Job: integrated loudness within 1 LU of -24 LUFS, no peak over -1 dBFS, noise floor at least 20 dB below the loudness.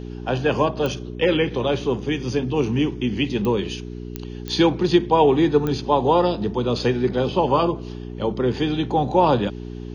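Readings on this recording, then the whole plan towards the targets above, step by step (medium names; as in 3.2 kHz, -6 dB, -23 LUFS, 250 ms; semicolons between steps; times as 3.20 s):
clicks found 5; hum 60 Hz; highest harmonic 420 Hz; hum level -30 dBFS; loudness -21.0 LUFS; peak level -4.5 dBFS; loudness target -24.0 LUFS
-> de-click; de-hum 60 Hz, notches 7; trim -3 dB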